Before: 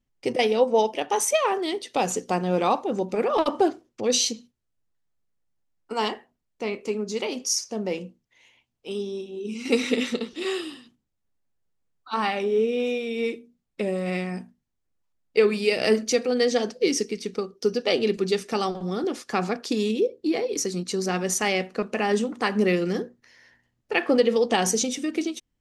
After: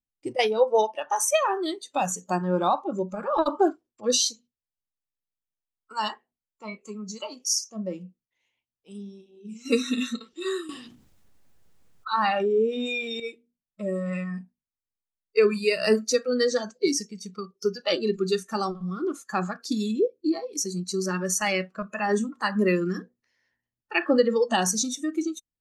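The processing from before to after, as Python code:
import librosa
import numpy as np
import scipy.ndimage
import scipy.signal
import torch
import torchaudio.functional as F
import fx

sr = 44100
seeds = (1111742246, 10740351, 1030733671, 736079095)

y = fx.noise_reduce_blind(x, sr, reduce_db=18)
y = fx.env_flatten(y, sr, amount_pct=50, at=(10.69, 13.2))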